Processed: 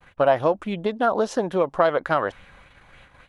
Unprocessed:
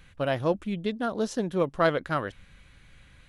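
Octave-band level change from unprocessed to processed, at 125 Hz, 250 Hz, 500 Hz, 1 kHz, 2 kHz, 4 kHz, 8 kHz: −1.0, +1.0, +6.5, +8.0, +3.5, +1.0, +2.0 decibels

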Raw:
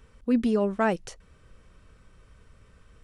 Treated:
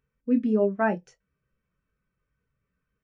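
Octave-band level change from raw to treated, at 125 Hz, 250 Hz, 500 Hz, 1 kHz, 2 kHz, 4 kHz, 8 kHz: 0.0 dB, +0.5 dB, +1.0 dB, 0.0 dB, +1.0 dB, below −10 dB, below −10 dB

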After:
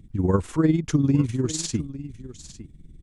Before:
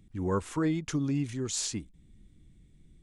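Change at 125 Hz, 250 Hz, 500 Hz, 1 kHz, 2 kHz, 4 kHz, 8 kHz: +10.5, +8.5, +7.0, +3.5, +3.0, +2.5, +2.5 decibels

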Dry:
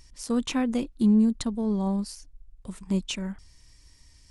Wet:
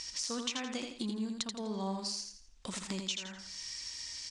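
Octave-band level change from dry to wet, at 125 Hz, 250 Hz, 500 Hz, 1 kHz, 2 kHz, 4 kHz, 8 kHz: −14.0, −15.0, −9.0, −5.0, −3.0, +2.0, +1.5 decibels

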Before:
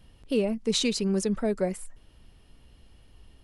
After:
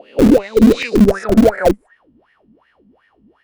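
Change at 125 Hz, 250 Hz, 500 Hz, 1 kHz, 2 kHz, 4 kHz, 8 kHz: +13.5, +16.5, +14.5, +19.0, +15.0, +1.0, 0.0 decibels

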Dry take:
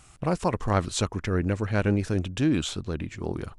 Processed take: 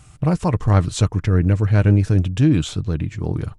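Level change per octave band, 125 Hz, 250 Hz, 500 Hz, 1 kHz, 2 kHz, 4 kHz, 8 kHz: +12.0, +6.5, +3.0, +2.5, +2.0, +2.0, +2.0 decibels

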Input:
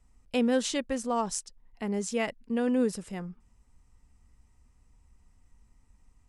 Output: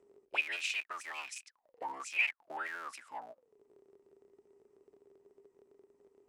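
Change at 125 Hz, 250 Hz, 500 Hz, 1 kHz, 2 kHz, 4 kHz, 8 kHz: below −30 dB, −32.0 dB, −21.0 dB, −6.5 dB, +5.0 dB, −3.0 dB, −11.5 dB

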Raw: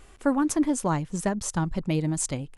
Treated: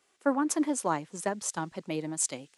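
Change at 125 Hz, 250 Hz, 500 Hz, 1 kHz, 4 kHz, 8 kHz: −14.5, −6.0, −2.5, −1.5, −2.0, −0.5 decibels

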